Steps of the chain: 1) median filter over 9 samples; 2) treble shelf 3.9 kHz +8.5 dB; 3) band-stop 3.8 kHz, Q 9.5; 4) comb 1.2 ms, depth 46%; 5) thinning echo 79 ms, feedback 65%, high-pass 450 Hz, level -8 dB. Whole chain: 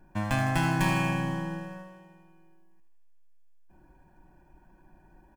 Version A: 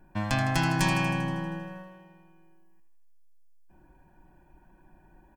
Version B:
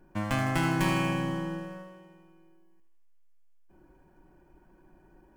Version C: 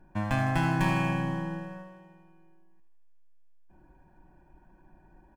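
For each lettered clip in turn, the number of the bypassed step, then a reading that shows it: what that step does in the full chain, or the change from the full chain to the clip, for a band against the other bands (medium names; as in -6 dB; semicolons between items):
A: 1, 4 kHz band +4.0 dB; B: 4, 500 Hz band +2.5 dB; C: 2, 8 kHz band -6.5 dB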